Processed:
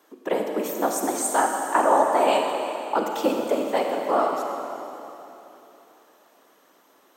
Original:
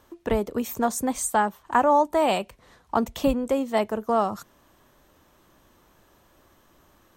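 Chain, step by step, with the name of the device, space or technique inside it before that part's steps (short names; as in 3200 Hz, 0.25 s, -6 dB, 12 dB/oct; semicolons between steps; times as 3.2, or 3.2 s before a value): whispering ghost (whisperiser; HPF 270 Hz 24 dB/oct; reverb RT60 3.1 s, pre-delay 36 ms, DRR 2 dB)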